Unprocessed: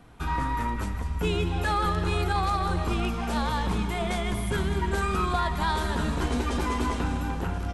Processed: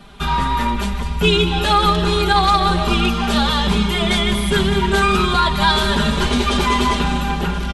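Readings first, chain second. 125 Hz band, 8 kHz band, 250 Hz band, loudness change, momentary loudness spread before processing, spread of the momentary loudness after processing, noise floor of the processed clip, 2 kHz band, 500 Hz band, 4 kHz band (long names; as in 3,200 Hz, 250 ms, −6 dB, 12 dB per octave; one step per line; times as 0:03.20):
+7.5 dB, +11.0 dB, +10.5 dB, +11.0 dB, 4 LU, 5 LU, −23 dBFS, +12.0 dB, +11.0 dB, +18.0 dB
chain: parametric band 3,500 Hz +9.5 dB 1 octave
comb filter 5 ms, depth 100%
level +6.5 dB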